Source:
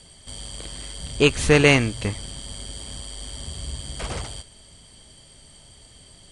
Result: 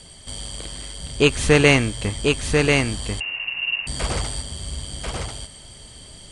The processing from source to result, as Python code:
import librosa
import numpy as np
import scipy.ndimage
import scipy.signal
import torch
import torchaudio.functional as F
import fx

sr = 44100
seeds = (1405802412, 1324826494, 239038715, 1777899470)

p1 = fx.rider(x, sr, range_db=5, speed_s=2.0)
p2 = p1 + fx.echo_single(p1, sr, ms=1041, db=-3.5, dry=0)
y = fx.freq_invert(p2, sr, carrier_hz=2800, at=(3.2, 3.87))